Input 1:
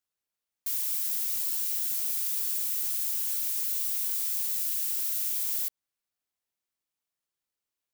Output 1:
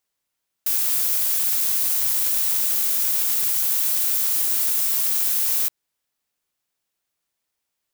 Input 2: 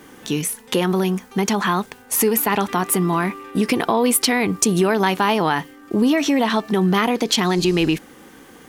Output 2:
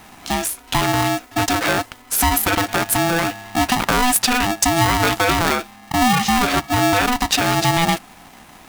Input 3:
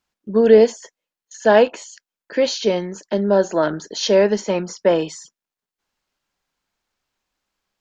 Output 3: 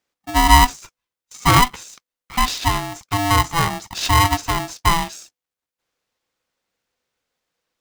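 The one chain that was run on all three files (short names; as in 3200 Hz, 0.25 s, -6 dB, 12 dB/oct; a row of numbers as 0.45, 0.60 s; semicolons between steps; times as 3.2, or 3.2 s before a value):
polarity switched at an audio rate 500 Hz; match loudness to -18 LUFS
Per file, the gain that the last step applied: +8.5, +1.0, -0.5 dB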